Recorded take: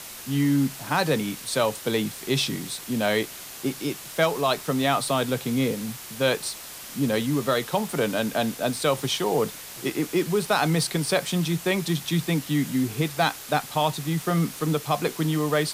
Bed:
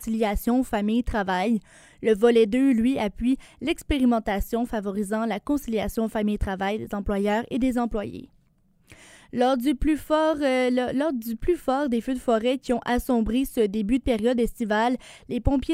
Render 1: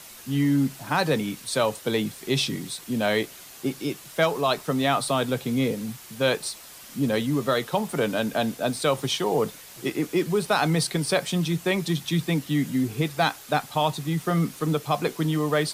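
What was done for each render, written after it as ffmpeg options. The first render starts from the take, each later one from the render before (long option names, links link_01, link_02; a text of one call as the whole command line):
ffmpeg -i in.wav -af "afftdn=noise_reduction=6:noise_floor=-40" out.wav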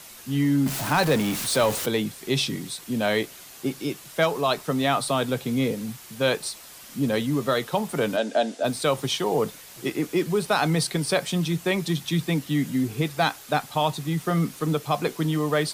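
ffmpeg -i in.wav -filter_complex "[0:a]asettb=1/sr,asplit=3[link_01][link_02][link_03];[link_01]atrim=end=0.664[link_04];[link_02]atrim=start=0.66:end=1.86,asetpts=PTS-STARTPTS,afade=type=in:duration=0.004:curve=qsin,afade=type=out:start_time=1.196:duration=0.004:curve=qsin,aeval=exprs='val(0)+0.5*0.0531*sgn(val(0))':channel_layout=same[link_05];[link_03]atrim=start=1.856[link_06];[link_04][link_05]acrossfade=duration=0.004:curve1=hsin:curve2=qsin[link_07];[link_07][link_06]acrossfade=duration=0.004:curve1=qsin:curve2=hsin,asplit=3[link_08][link_09][link_10];[link_08]afade=type=out:start_time=8.16:duration=0.02[link_11];[link_09]highpass=frequency=240:width=0.5412,highpass=frequency=240:width=1.3066,equalizer=frequency=630:width_type=q:width=4:gain=7,equalizer=frequency=1100:width_type=q:width=4:gain=-8,equalizer=frequency=2300:width_type=q:width=4:gain=-4,lowpass=frequency=8500:width=0.5412,lowpass=frequency=8500:width=1.3066,afade=type=in:start_time=8.16:duration=0.02,afade=type=out:start_time=8.63:duration=0.02[link_12];[link_10]afade=type=in:start_time=8.63:duration=0.02[link_13];[link_11][link_12][link_13]amix=inputs=3:normalize=0" out.wav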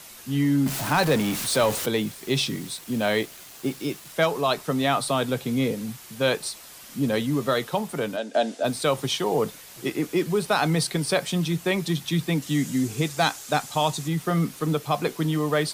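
ffmpeg -i in.wav -filter_complex "[0:a]asettb=1/sr,asplit=3[link_01][link_02][link_03];[link_01]atrim=end=1.964[link_04];[link_02]atrim=start=1.96:end=4.13,asetpts=PTS-STARTPTS,afade=type=in:duration=0.004:curve=qsin,afade=type=out:start_time=2.166:duration=0.004:curve=qsin,acrusher=bits=6:mix=0:aa=0.5[link_05];[link_03]atrim=start=4.126[link_06];[link_04][link_05]acrossfade=duration=0.004:curve1=hsin:curve2=qsin[link_07];[link_07][link_06]acrossfade=duration=0.004:curve1=qsin:curve2=hsin,asettb=1/sr,asplit=3[link_08][link_09][link_10];[link_08]atrim=end=12.424[link_11];[link_09]atrim=start=12.42:end=14.08,asetpts=PTS-STARTPTS,afade=type=in:duration=0.004:curve=qsin,afade=type=out:start_time=1.656:duration=0.004:curve=qsin,equalizer=frequency=7000:width_type=o:width=1:gain=9[link_12];[link_10]atrim=start=14.076[link_13];[link_11][link_12]acrossfade=duration=0.004:curve1=hsin:curve2=qsin[link_14];[link_14][link_13]acrossfade=duration=0.004:curve1=qsin:curve2=hsin,asplit=2[link_15][link_16];[link_15]atrim=end=8.34,asetpts=PTS-STARTPTS,afade=type=out:start_time=7.62:duration=0.72:silence=0.446684[link_17];[link_16]atrim=start=8.34,asetpts=PTS-STARTPTS,afade=type=in:duration=0.004:curve=hsin:silence=0.446684[link_18];[link_17][link_18]concat=n=2:v=0:a=1" out.wav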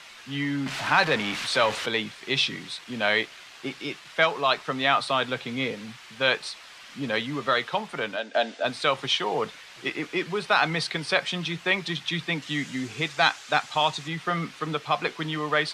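ffmpeg -i in.wav -af "lowpass=2800,tiltshelf=frequency=830:gain=-9.5" out.wav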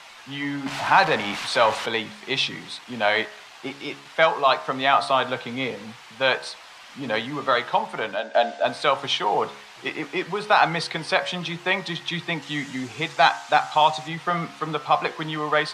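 ffmpeg -i in.wav -af "equalizer=frequency=830:width=1.4:gain=8.5,bandreject=frequency=70.14:width_type=h:width=4,bandreject=frequency=140.28:width_type=h:width=4,bandreject=frequency=210.42:width_type=h:width=4,bandreject=frequency=280.56:width_type=h:width=4,bandreject=frequency=350.7:width_type=h:width=4,bandreject=frequency=420.84:width_type=h:width=4,bandreject=frequency=490.98:width_type=h:width=4,bandreject=frequency=561.12:width_type=h:width=4,bandreject=frequency=631.26:width_type=h:width=4,bandreject=frequency=701.4:width_type=h:width=4,bandreject=frequency=771.54:width_type=h:width=4,bandreject=frequency=841.68:width_type=h:width=4,bandreject=frequency=911.82:width_type=h:width=4,bandreject=frequency=981.96:width_type=h:width=4,bandreject=frequency=1052.1:width_type=h:width=4,bandreject=frequency=1122.24:width_type=h:width=4,bandreject=frequency=1192.38:width_type=h:width=4,bandreject=frequency=1262.52:width_type=h:width=4,bandreject=frequency=1332.66:width_type=h:width=4,bandreject=frequency=1402.8:width_type=h:width=4,bandreject=frequency=1472.94:width_type=h:width=4,bandreject=frequency=1543.08:width_type=h:width=4,bandreject=frequency=1613.22:width_type=h:width=4,bandreject=frequency=1683.36:width_type=h:width=4,bandreject=frequency=1753.5:width_type=h:width=4,bandreject=frequency=1823.64:width_type=h:width=4,bandreject=frequency=1893.78:width_type=h:width=4,bandreject=frequency=1963.92:width_type=h:width=4" out.wav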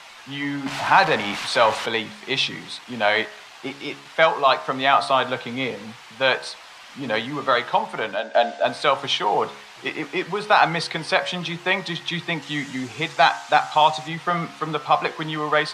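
ffmpeg -i in.wav -af "volume=1.5dB,alimiter=limit=-3dB:level=0:latency=1" out.wav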